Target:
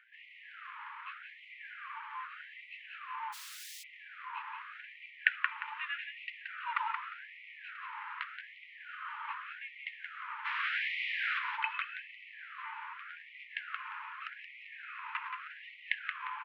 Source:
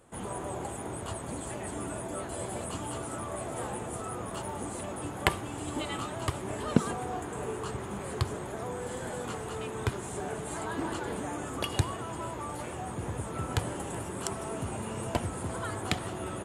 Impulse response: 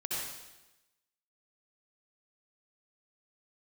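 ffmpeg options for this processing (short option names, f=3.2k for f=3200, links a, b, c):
-filter_complex "[0:a]acrossover=split=160|1100[a][b][c];[b]equalizer=f=470:w=0.63:g=-8[d];[c]acompressor=mode=upward:threshold=-56dB:ratio=2.5[e];[a][d][e]amix=inputs=3:normalize=0,aeval=exprs='val(0)+0.00316*(sin(2*PI*60*n/s)+sin(2*PI*2*60*n/s)/2+sin(2*PI*3*60*n/s)/3+sin(2*PI*4*60*n/s)/4+sin(2*PI*5*60*n/s)/5)':c=same,acrusher=bits=2:mode=log:mix=0:aa=0.000001,asplit=3[f][g][h];[f]afade=t=out:st=10.44:d=0.02[i];[g]aeval=exprs='0.0447*sin(PI/2*10*val(0)/0.0447)':c=same,afade=t=in:st=10.44:d=0.02,afade=t=out:st=11.38:d=0.02[j];[h]afade=t=in:st=11.38:d=0.02[k];[i][j][k]amix=inputs=3:normalize=0,highpass=f=390:t=q:w=0.5412,highpass=f=390:t=q:w=1.307,lowpass=f=2.8k:t=q:w=0.5176,lowpass=f=2.8k:t=q:w=0.7071,lowpass=f=2.8k:t=q:w=1.932,afreqshift=-280,aecho=1:1:176|352|528|704:0.501|0.145|0.0421|0.0122,asplit=3[l][m][n];[l]afade=t=out:st=3.32:d=0.02[o];[m]aeval=exprs='(mod(211*val(0)+1,2)-1)/211':c=same,afade=t=in:st=3.32:d=0.02,afade=t=out:st=3.82:d=0.02[p];[n]afade=t=in:st=3.82:d=0.02[q];[o][p][q]amix=inputs=3:normalize=0,afftfilt=real='re*gte(b*sr/1024,820*pow(1900/820,0.5+0.5*sin(2*PI*0.84*pts/sr)))':imag='im*gte(b*sr/1024,820*pow(1900/820,0.5+0.5*sin(2*PI*0.84*pts/sr)))':win_size=1024:overlap=0.75,volume=4.5dB"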